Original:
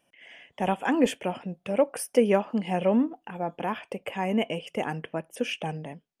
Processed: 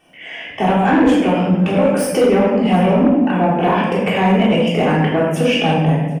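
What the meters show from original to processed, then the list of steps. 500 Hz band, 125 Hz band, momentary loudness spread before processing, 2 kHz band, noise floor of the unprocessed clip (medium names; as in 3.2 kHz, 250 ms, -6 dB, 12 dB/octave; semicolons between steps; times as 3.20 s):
+11.5 dB, +19.0 dB, 11 LU, +13.5 dB, -76 dBFS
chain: compression 4:1, threshold -30 dBFS, peak gain reduction 13 dB; treble shelf 5.3 kHz +6.5 dB; on a send: delay 743 ms -22.5 dB; on the sum: simulated room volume 620 m³, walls mixed, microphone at 3.5 m; Chebyshev shaper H 5 -16 dB, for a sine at -10.5 dBFS; peaking EQ 12 kHz -13.5 dB 2 oct; trim +8 dB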